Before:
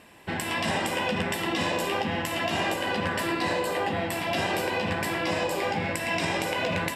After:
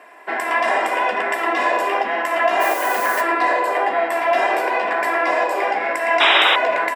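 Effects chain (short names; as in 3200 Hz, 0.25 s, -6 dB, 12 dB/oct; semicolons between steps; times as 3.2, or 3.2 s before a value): HPF 230 Hz 24 dB/oct; band shelf 990 Hz +14 dB 2.6 oct; comb 2.9 ms, depth 58%; 2.6–3.2 added noise blue -28 dBFS; 6.2–6.56 painted sound noise 820–3900 Hz -11 dBFS; gain -4 dB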